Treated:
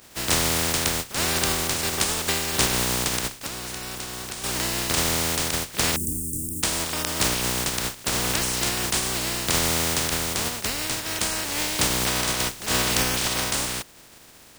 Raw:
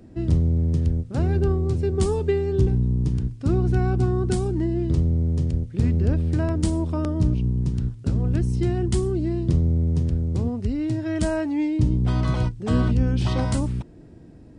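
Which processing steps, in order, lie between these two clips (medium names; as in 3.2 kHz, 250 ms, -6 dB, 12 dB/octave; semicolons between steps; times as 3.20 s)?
spectral contrast reduction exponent 0.18; 3.27–4.44 s: compression 10:1, threshold -27 dBFS, peak gain reduction 11.5 dB; 5.96–6.63 s: elliptic band-stop 300–8500 Hz, stop band 50 dB; trim -3 dB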